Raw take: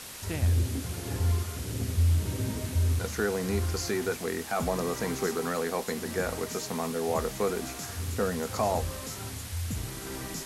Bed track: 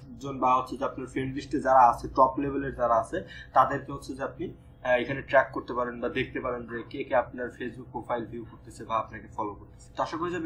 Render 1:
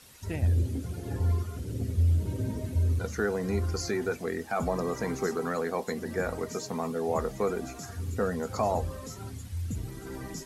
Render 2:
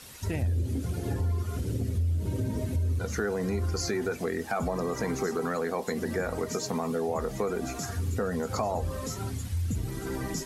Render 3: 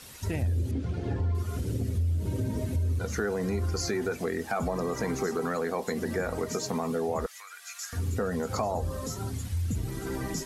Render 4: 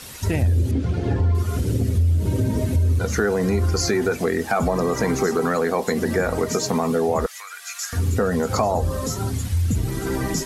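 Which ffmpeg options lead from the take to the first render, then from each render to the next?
-af "afftdn=nr=13:nf=-40"
-filter_complex "[0:a]asplit=2[a][b];[b]alimiter=level_in=1.5dB:limit=-24dB:level=0:latency=1:release=72,volume=-1.5dB,volume=1dB[c];[a][c]amix=inputs=2:normalize=0,acompressor=threshold=-27dB:ratio=3"
-filter_complex "[0:a]asettb=1/sr,asplit=3[a][b][c];[a]atrim=end=0.714[d];[b]atrim=start=0.71:end=1.35,asetpts=PTS-STARTPTS,afade=t=in:d=0.004:c=qsin,afade=t=out:st=0.636:d=0.004:c=qsin,lowpass=3.8k[e];[c]atrim=start=1.346[f];[d][e]acrossfade=d=0.004:c1=hsin:c2=qsin[g];[g][f]acrossfade=d=0.004:c1=qsin:c2=hsin,asettb=1/sr,asplit=3[h][i][j];[h]atrim=end=7.264[k];[i]atrim=start=7.26:end=7.93,asetpts=PTS-STARTPTS,afade=t=in:d=0.004:c=qsin,afade=t=out:st=0.666:d=0.004:c=qsin,highpass=f=1.5k:w=0.5412,highpass=f=1.5k:w=1.3066[l];[j]atrim=start=7.926[m];[k][l]acrossfade=d=0.004:c1=hsin:c2=qsin[n];[n][m]acrossfade=d=0.004:c1=qsin:c2=hsin,asettb=1/sr,asplit=3[o][p][q];[o]atrim=end=8.654[r];[p]atrim=start=8.65:end=9.34,asetpts=PTS-STARTPTS,afade=t=in:d=0.004:c=qsin,afade=t=out:st=0.686:d=0.004:c=qsin,equalizer=f=2.3k:w=1.5:g=-5.5[s];[q]atrim=start=9.336[t];[r][s]acrossfade=d=0.004:c1=hsin:c2=qsin[u];[u][t]acrossfade=d=0.004:c1=qsin:c2=hsin"
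-af "volume=9dB"

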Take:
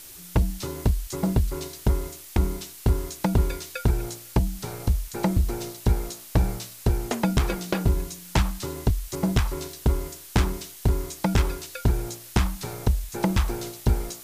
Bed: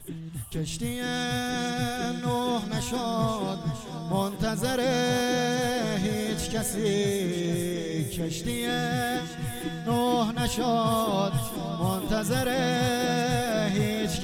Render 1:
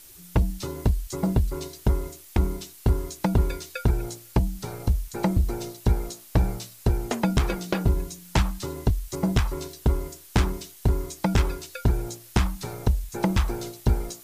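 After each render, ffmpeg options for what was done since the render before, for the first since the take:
-af "afftdn=nr=6:nf=-44"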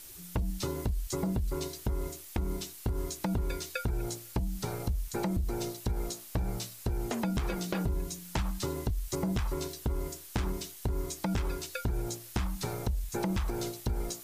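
-af "alimiter=limit=-19.5dB:level=0:latency=1:release=82,acompressor=threshold=-28dB:ratio=4"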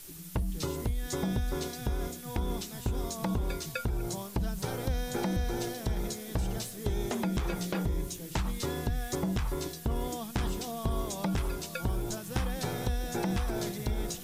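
-filter_complex "[1:a]volume=-14dB[a];[0:a][a]amix=inputs=2:normalize=0"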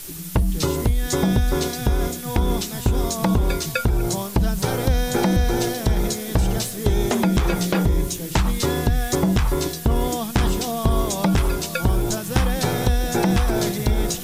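-af "volume=12dB"

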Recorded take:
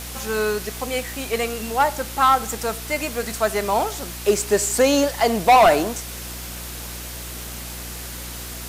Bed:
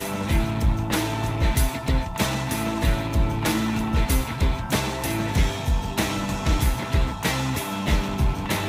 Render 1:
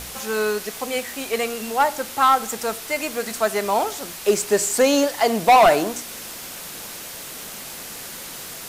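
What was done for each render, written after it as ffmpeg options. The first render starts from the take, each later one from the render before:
-af "bandreject=f=60:t=h:w=4,bandreject=f=120:t=h:w=4,bandreject=f=180:t=h:w=4,bandreject=f=240:t=h:w=4,bandreject=f=300:t=h:w=4,bandreject=f=360:t=h:w=4"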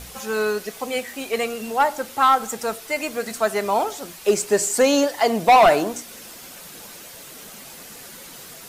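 -af "afftdn=nr=7:nf=-36"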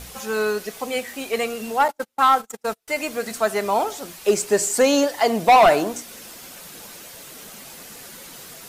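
-filter_complex "[0:a]asettb=1/sr,asplit=3[a][b][c];[a]atrim=end=1.884[d];[b]atrim=start=1.88:end=2.88,asetpts=PTS-STARTPTS,afade=t=in:d=0.004:c=qsin,afade=t=out:st=0.996:d=0.004:c=qsin,agate=range=-38dB:threshold=-28dB:ratio=16:release=100:detection=peak[e];[c]atrim=start=2.876[f];[d][e]acrossfade=d=0.004:c1=hsin:c2=qsin[g];[g][f]acrossfade=d=0.004:c1=qsin:c2=hsin"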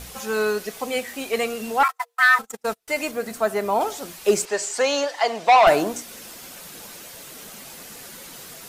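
-filter_complex "[0:a]asettb=1/sr,asplit=3[a][b][c];[a]atrim=end=1.834[d];[b]atrim=start=1.83:end=2.39,asetpts=PTS-STARTPTS,afade=t=in:d=0.004:c=qsin,afade=t=out:st=0.556:d=0.004:c=qsin,afreqshift=470[e];[c]atrim=start=2.386[f];[d][e]acrossfade=d=0.004:c1=hsin:c2=qsin[g];[g][f]acrossfade=d=0.004:c1=qsin:c2=hsin,asettb=1/sr,asplit=3[h][i][j];[h]atrim=end=3.114[k];[i]atrim=start=3.11:end=3.81,asetpts=PTS-STARTPTS,afade=t=in:d=0.004:c=qsin,afade=t=out:st=0.696:d=0.004:c=qsin,equalizer=f=5.2k:t=o:w=3:g=-6.5[l];[j]atrim=start=3.806[m];[k][l]acrossfade=d=0.004:c1=hsin:c2=qsin[n];[n][m]acrossfade=d=0.004:c1=qsin:c2=hsin,asettb=1/sr,asplit=3[o][p][q];[o]atrim=end=4.454[r];[p]atrim=start=4.45:end=5.67,asetpts=PTS-STARTPTS,afade=t=in:d=0.004:c=qsin,afade=t=out:st=1.216:d=0.004:c=qsin,acrossover=split=510 7300:gain=0.178 1 0.1[s][t][u];[s][t][u]amix=inputs=3:normalize=0[v];[q]atrim=start=5.666[w];[r][v]acrossfade=d=0.004:c1=hsin:c2=qsin[x];[x][w]acrossfade=d=0.004:c1=qsin:c2=hsin"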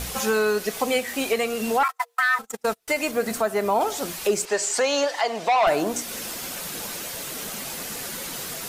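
-filter_complex "[0:a]asplit=2[a][b];[b]acompressor=threshold=-26dB:ratio=6,volume=2.5dB[c];[a][c]amix=inputs=2:normalize=0,alimiter=limit=-12dB:level=0:latency=1:release=498"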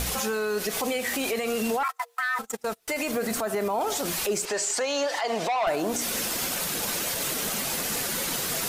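-filter_complex "[0:a]asplit=2[a][b];[b]acompressor=threshold=-29dB:ratio=6,volume=1.5dB[c];[a][c]amix=inputs=2:normalize=0,alimiter=limit=-19dB:level=0:latency=1:release=42"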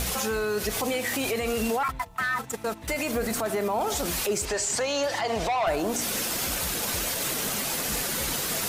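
-filter_complex "[1:a]volume=-19dB[a];[0:a][a]amix=inputs=2:normalize=0"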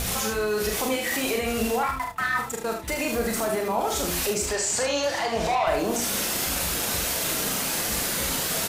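-filter_complex "[0:a]asplit=2[a][b];[b]adelay=31,volume=-10dB[c];[a][c]amix=inputs=2:normalize=0,aecho=1:1:42|76:0.531|0.447"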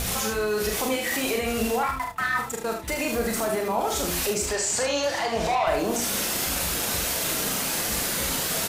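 -af anull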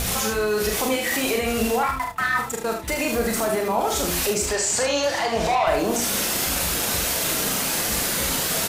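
-af "volume=3dB"

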